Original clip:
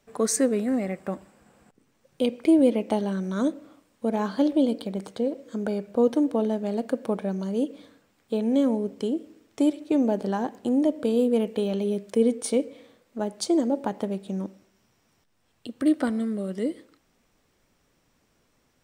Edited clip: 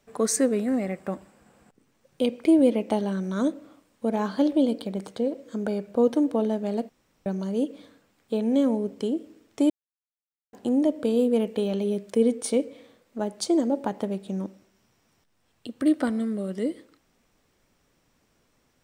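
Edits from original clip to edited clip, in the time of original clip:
0:06.89–0:07.26: fill with room tone
0:09.70–0:10.53: silence

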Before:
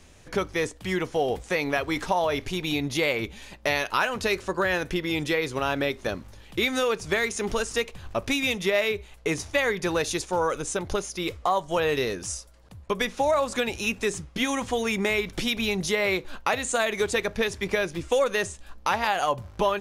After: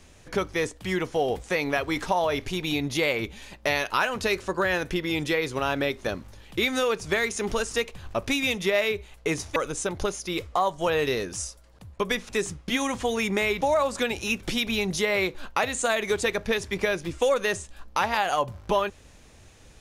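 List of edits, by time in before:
0:09.56–0:10.46: remove
0:13.19–0:13.97: move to 0:15.30

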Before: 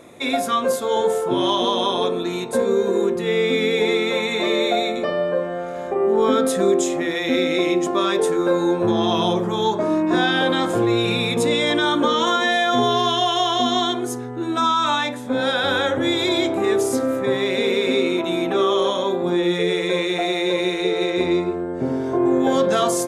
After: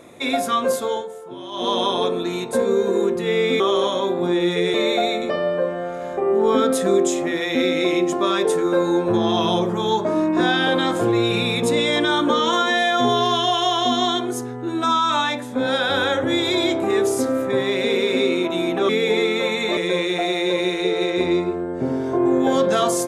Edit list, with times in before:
0:00.85–0:01.72: duck −15 dB, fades 0.21 s
0:03.60–0:04.48: swap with 0:18.63–0:19.77

